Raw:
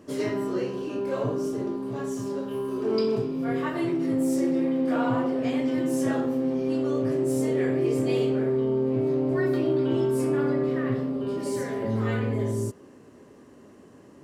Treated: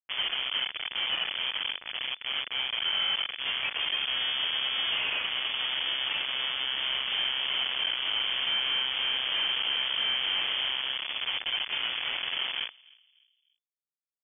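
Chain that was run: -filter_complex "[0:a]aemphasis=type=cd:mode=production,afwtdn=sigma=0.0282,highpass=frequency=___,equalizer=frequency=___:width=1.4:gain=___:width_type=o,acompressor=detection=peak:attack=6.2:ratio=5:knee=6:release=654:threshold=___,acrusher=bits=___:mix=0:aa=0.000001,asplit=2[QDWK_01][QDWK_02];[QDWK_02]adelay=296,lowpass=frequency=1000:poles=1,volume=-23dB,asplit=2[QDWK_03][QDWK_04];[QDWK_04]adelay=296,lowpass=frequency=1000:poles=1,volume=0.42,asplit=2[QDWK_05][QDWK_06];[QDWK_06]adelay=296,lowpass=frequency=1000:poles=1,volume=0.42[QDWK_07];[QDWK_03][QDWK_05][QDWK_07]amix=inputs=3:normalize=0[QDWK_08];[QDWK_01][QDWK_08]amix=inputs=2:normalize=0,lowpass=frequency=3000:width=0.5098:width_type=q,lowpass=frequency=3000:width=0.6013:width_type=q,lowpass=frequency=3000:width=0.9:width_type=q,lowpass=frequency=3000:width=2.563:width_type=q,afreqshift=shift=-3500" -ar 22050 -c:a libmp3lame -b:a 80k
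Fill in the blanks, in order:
330, 870, 7.5, -26dB, 4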